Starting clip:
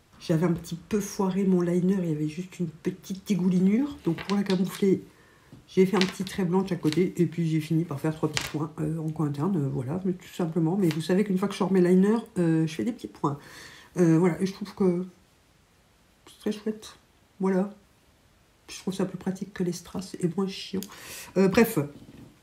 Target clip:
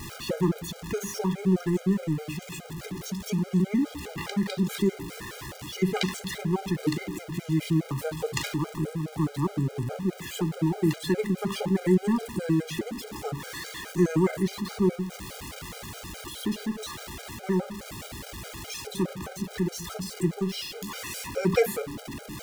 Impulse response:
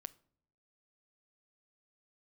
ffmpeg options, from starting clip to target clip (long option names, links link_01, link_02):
-af "aeval=exprs='val(0)+0.5*0.0282*sgn(val(0))':channel_layout=same,afftfilt=real='re*gt(sin(2*PI*4.8*pts/sr)*(1-2*mod(floor(b*sr/1024/410),2)),0)':imag='im*gt(sin(2*PI*4.8*pts/sr)*(1-2*mod(floor(b*sr/1024/410),2)),0)':win_size=1024:overlap=0.75"